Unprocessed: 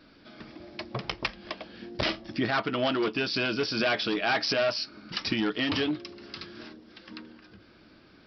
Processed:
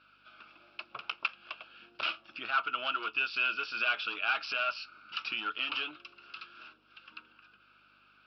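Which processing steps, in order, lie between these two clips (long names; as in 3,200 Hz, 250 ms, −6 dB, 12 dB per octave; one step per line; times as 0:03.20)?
mains hum 50 Hz, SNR 14 dB
pair of resonant band-passes 1,900 Hz, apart 0.92 octaves
level +4.5 dB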